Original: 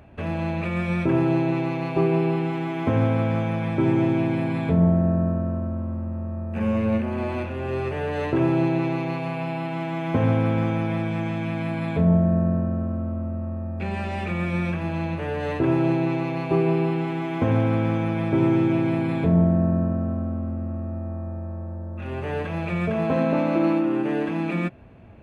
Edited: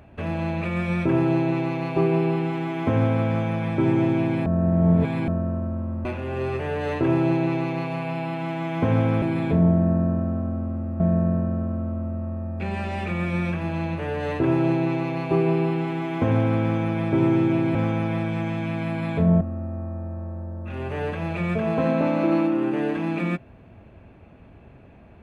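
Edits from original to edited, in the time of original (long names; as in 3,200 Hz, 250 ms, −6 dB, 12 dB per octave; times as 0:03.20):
0:04.46–0:05.28: reverse
0:06.05–0:07.37: remove
0:10.54–0:12.20: swap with 0:18.95–0:20.73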